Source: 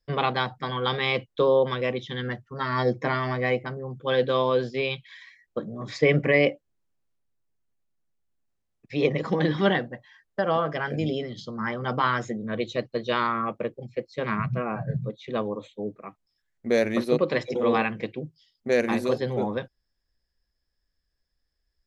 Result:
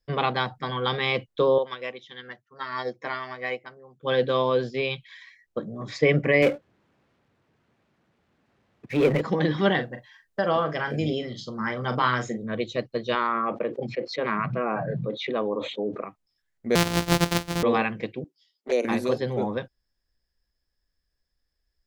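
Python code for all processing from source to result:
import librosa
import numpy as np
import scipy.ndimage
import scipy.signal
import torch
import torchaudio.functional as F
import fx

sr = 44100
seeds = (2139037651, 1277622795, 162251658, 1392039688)

y = fx.chain(x, sr, fx.highpass(hz=750.0, slope=6),
    fx.upward_expand(threshold_db=-38.0, expansion=1.5), at=(1.58, 4.03))
y = fx.chain(y, sr, fx.bandpass_edges(low_hz=110.0, high_hz=2500.0),
    fx.power_curve(exponent=0.7), at=(6.42, 9.21))
y = fx.chain(y, sr, fx.high_shelf(hz=4700.0, db=5.5),
    fx.doubler(ms=40.0, db=-10.0), at=(9.74, 12.43))
y = fx.chain(y, sr, fx.bandpass_edges(low_hz=260.0, high_hz=4800.0),
    fx.high_shelf(hz=3700.0, db=-9.5),
    fx.env_flatten(amount_pct=70), at=(13.15, 16.04))
y = fx.chain(y, sr, fx.sample_sort(block=256),
    fx.peak_eq(hz=4400.0, db=5.0, octaves=1.7), at=(16.75, 17.63))
y = fx.chain(y, sr, fx.steep_highpass(hz=270.0, slope=36),
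    fx.env_flanger(rest_ms=12.0, full_db=-21.0), at=(18.24, 18.85))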